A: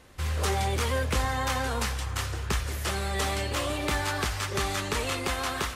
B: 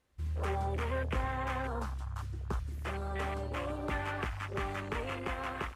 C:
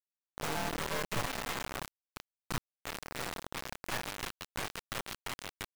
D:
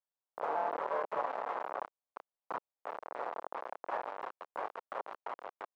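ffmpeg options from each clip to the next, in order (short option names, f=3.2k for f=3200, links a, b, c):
-af "afwtdn=0.0251,volume=-6dB"
-filter_complex "[0:a]acrossover=split=220|440|3700[a][b][c][d];[b]alimiter=level_in=17.5dB:limit=-24dB:level=0:latency=1:release=90,volume=-17.5dB[e];[a][e][c][d]amix=inputs=4:normalize=0,aeval=exprs='abs(val(0))':c=same,acrusher=bits=4:mix=0:aa=0.000001,volume=-2.5dB"
-af "crystalizer=i=1:c=0,asuperpass=centerf=750:order=4:qfactor=1.1,volume=5.5dB"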